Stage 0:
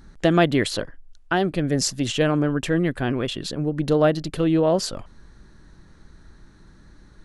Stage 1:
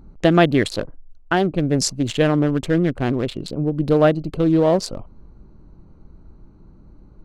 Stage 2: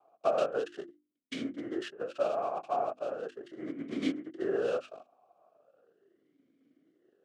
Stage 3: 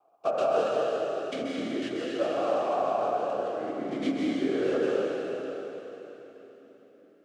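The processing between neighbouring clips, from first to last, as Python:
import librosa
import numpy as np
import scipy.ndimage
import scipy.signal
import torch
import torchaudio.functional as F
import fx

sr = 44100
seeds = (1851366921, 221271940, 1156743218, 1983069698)

y1 = fx.wiener(x, sr, points=25)
y1 = y1 * librosa.db_to_amplitude(3.5)
y2 = fx.noise_vocoder(y1, sr, seeds[0], bands=2)
y2 = fx.hum_notches(y2, sr, base_hz=50, count=7)
y2 = fx.vowel_sweep(y2, sr, vowels='a-i', hz=0.38)
y2 = y2 * librosa.db_to_amplitude(-5.0)
y3 = fx.rev_plate(y2, sr, seeds[1], rt60_s=3.8, hf_ratio=0.95, predelay_ms=120, drr_db=-5.0)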